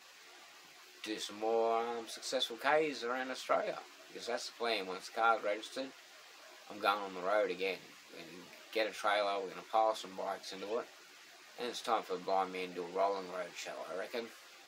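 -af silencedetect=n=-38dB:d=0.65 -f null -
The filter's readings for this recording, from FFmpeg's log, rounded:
silence_start: 0.00
silence_end: 1.04 | silence_duration: 1.04
silence_start: 5.87
silence_end: 6.70 | silence_duration: 0.84
silence_start: 10.82
silence_end: 11.59 | silence_duration: 0.77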